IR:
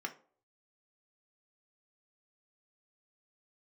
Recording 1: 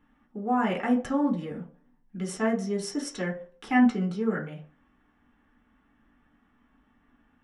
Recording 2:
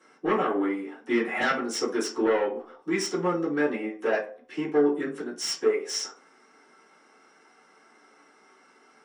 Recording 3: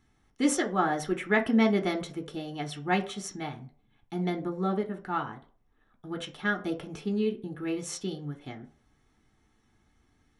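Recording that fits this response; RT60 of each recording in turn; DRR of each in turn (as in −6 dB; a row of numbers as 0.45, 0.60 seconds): 3; 0.50, 0.50, 0.50 seconds; −2.5, −10.0, 4.0 decibels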